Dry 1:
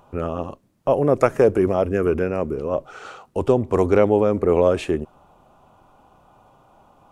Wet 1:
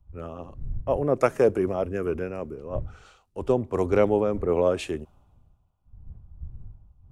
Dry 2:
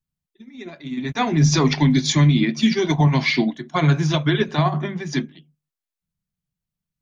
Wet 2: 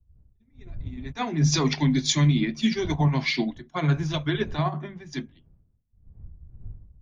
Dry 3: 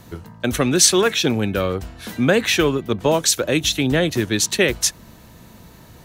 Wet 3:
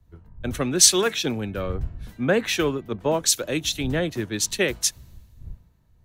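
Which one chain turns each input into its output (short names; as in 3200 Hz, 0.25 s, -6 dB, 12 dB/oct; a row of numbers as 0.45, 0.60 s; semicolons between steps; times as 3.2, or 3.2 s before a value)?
wind noise 97 Hz -35 dBFS; three-band expander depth 70%; gain -6.5 dB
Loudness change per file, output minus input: -5.5, -5.5, -4.0 LU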